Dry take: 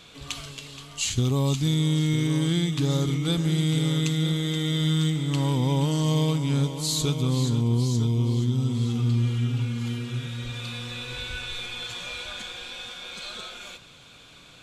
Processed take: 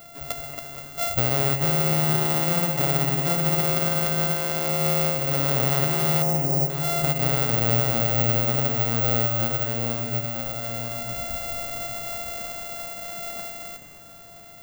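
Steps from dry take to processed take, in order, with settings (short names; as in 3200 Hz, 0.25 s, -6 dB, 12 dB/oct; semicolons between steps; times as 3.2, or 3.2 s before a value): sample sorter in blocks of 64 samples; on a send at -15 dB: reverb RT60 2.4 s, pre-delay 68 ms; on the sum: careless resampling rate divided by 2×, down none, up zero stuff; 6.22–6.7 elliptic band-stop 910–5300 Hz; in parallel at 0 dB: compressor, threshold -28 dBFS, peak gain reduction 13.5 dB; on the sum: analogue delay 0.231 s, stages 4096, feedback 66%, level -9.5 dB; gain -4.5 dB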